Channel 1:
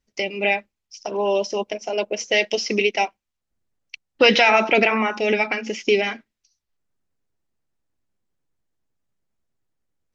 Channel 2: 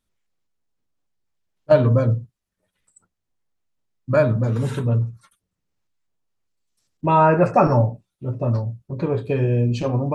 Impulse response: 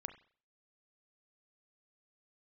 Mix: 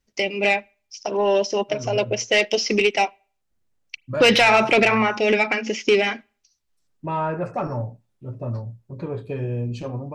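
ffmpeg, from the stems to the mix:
-filter_complex "[0:a]asoftclip=type=tanh:threshold=0.299,volume=1.19,asplit=3[s0][s1][s2];[s1]volume=0.178[s3];[1:a]dynaudnorm=f=160:g=5:m=1.68,asoftclip=type=tanh:threshold=0.668,volume=0.251,asplit=2[s4][s5];[s5]volume=0.168[s6];[s2]apad=whole_len=447430[s7];[s4][s7]sidechaincompress=threshold=0.0562:ratio=8:attack=16:release=1140[s8];[2:a]atrim=start_sample=2205[s9];[s3][s6]amix=inputs=2:normalize=0[s10];[s10][s9]afir=irnorm=-1:irlink=0[s11];[s0][s8][s11]amix=inputs=3:normalize=0"

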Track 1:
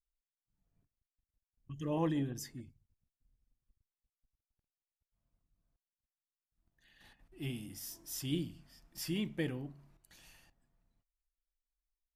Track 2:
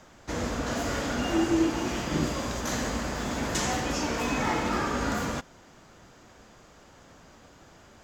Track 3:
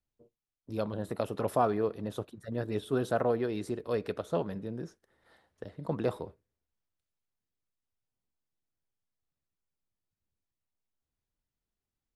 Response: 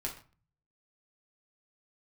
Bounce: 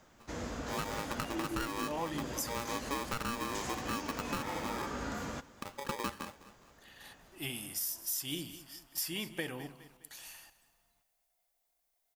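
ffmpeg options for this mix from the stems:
-filter_complex "[0:a]equalizer=f=880:t=o:w=2.4:g=12.5,crystalizer=i=8:c=0,volume=0.501,asplit=2[s0][s1];[s1]volume=0.119[s2];[1:a]volume=0.355,asplit=2[s3][s4];[s4]volume=0.0891[s5];[2:a]aeval=exprs='val(0)*sgn(sin(2*PI*700*n/s))':c=same,volume=0.944,asplit=2[s6][s7];[s7]volume=0.0891[s8];[s2][s5][s8]amix=inputs=3:normalize=0,aecho=0:1:206|412|618|824|1030|1236:1|0.41|0.168|0.0689|0.0283|0.0116[s9];[s0][s3][s6][s9]amix=inputs=4:normalize=0,acompressor=threshold=0.0224:ratio=6"

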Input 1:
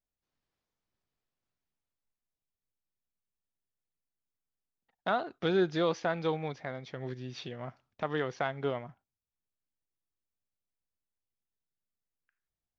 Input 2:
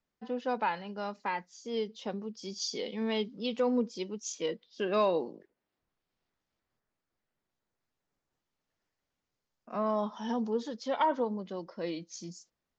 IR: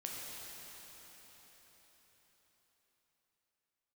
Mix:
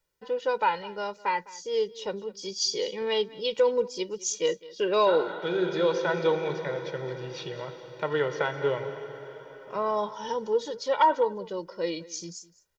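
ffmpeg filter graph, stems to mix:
-filter_complex "[0:a]highpass=f=130:w=0.5412,highpass=f=130:w=1.3066,volume=1,asplit=3[s0][s1][s2];[s1]volume=0.631[s3];[s2]volume=0.237[s4];[1:a]highshelf=f=5600:g=6,volume=1.33,asplit=3[s5][s6][s7];[s6]volume=0.1[s8];[s7]apad=whole_len=563758[s9];[s0][s9]sidechaincompress=threshold=0.0158:ratio=8:attack=16:release=922[s10];[2:a]atrim=start_sample=2205[s11];[s3][s11]afir=irnorm=-1:irlink=0[s12];[s4][s8]amix=inputs=2:normalize=0,aecho=0:1:206:1[s13];[s10][s5][s12][s13]amix=inputs=4:normalize=0,aecho=1:1:2.1:0.83"

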